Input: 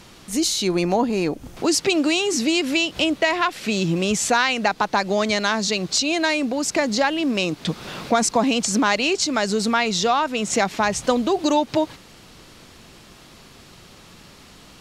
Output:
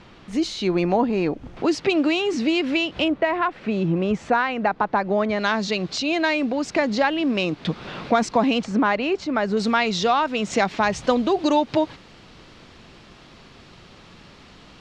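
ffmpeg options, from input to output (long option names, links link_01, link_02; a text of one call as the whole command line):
ffmpeg -i in.wav -af "asetnsamples=nb_out_samples=441:pad=0,asendcmd='3.08 lowpass f 1600;5.39 lowpass f 3400;8.64 lowpass f 1900;9.57 lowpass f 4300',lowpass=2900" out.wav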